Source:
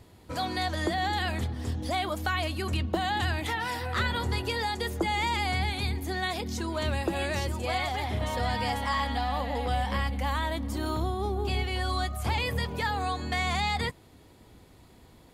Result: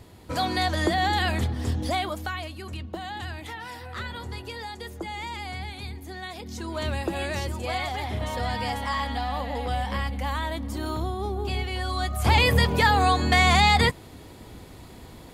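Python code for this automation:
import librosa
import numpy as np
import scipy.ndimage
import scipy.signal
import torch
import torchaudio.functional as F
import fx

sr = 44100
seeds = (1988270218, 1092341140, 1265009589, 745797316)

y = fx.gain(x, sr, db=fx.line((1.82, 5.0), (2.53, -6.5), (6.33, -6.5), (6.79, 0.5), (11.95, 0.5), (12.36, 10.0)))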